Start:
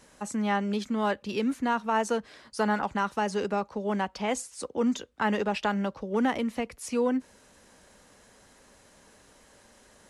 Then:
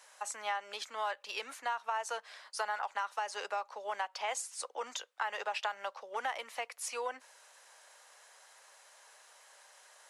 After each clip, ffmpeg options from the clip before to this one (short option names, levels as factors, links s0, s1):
-af "highpass=f=670:w=0.5412,highpass=f=670:w=1.3066,acompressor=threshold=0.0251:ratio=6"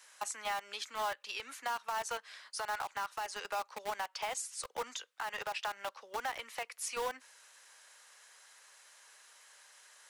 -filter_complex "[0:a]acrossover=split=460|960|4200[s0][s1][s2][s3];[s1]acrusher=bits=6:mix=0:aa=0.000001[s4];[s0][s4][s2][s3]amix=inputs=4:normalize=0,alimiter=level_in=1.68:limit=0.0631:level=0:latency=1:release=162,volume=0.596,volume=1.12"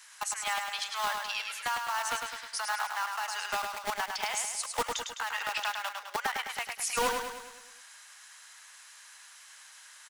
-filter_complex "[0:a]acrossover=split=750[s0][s1];[s0]acrusher=bits=5:mix=0:aa=0.000001[s2];[s2][s1]amix=inputs=2:normalize=0,aecho=1:1:104|208|312|416|520|624|728:0.562|0.298|0.158|0.0837|0.0444|0.0235|0.0125,volume=2"